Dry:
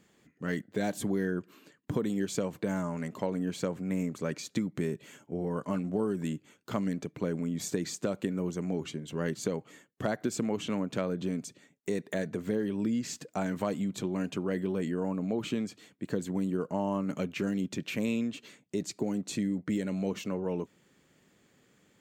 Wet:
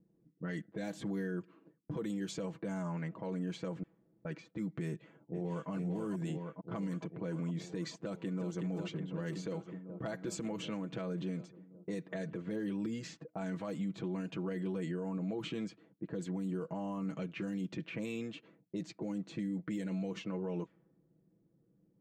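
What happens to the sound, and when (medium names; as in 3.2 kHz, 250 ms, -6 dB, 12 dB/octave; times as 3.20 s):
3.83–4.25 s: room tone
4.88–5.70 s: echo throw 450 ms, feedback 70%, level -4.5 dB
7.99–8.67 s: echo throw 370 ms, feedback 80%, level -8.5 dB
whole clip: level-controlled noise filter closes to 340 Hz, open at -26 dBFS; comb 6.1 ms, depth 67%; peak limiter -25.5 dBFS; trim -4.5 dB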